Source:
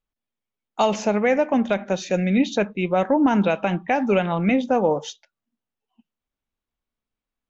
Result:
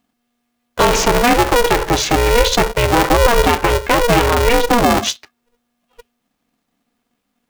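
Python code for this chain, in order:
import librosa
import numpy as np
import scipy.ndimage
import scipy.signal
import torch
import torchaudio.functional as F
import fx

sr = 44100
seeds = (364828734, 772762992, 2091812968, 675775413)

p1 = fx.over_compress(x, sr, threshold_db=-29.0, ratio=-1.0)
p2 = x + (p1 * 10.0 ** (0.0 / 20.0))
p3 = p2 * np.sign(np.sin(2.0 * np.pi * 240.0 * np.arange(len(p2)) / sr))
y = p3 * 10.0 ** (5.0 / 20.0)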